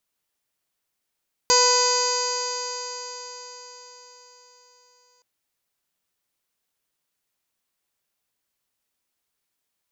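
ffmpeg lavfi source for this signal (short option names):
-f lavfi -i "aevalsrc='0.0891*pow(10,-3*t/4.79)*sin(2*PI*492.47*t)+0.106*pow(10,-3*t/4.79)*sin(2*PI*987.73*t)+0.0316*pow(10,-3*t/4.79)*sin(2*PI*1488.57*t)+0.0266*pow(10,-3*t/4.79)*sin(2*PI*1997.69*t)+0.0251*pow(10,-3*t/4.79)*sin(2*PI*2517.75*t)+0.0178*pow(10,-3*t/4.79)*sin(2*PI*3051.29*t)+0.0133*pow(10,-3*t/4.79)*sin(2*PI*3600.75*t)+0.0299*pow(10,-3*t/4.79)*sin(2*PI*4168.45*t)+0.112*pow(10,-3*t/4.79)*sin(2*PI*4756.55*t)+0.0282*pow(10,-3*t/4.79)*sin(2*PI*5367.09*t)+0.0668*pow(10,-3*t/4.79)*sin(2*PI*6001.95*t)+0.0891*pow(10,-3*t/4.79)*sin(2*PI*6662.89*t)+0.0398*pow(10,-3*t/4.79)*sin(2*PI*7351.51*t)':d=3.72:s=44100"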